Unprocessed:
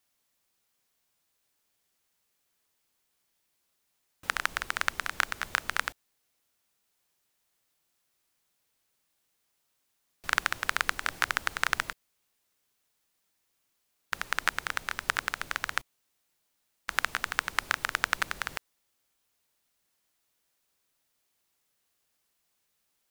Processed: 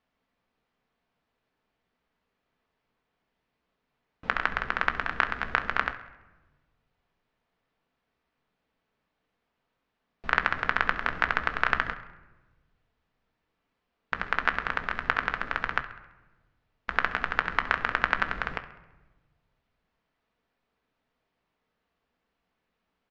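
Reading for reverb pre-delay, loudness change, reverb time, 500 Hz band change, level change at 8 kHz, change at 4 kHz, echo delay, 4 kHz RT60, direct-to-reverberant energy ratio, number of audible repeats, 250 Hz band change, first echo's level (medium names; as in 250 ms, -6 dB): 4 ms, +2.5 dB, 1.1 s, +7.0 dB, under -15 dB, -4.0 dB, 67 ms, 0.70 s, 6.5 dB, 3, +8.5 dB, -16.5 dB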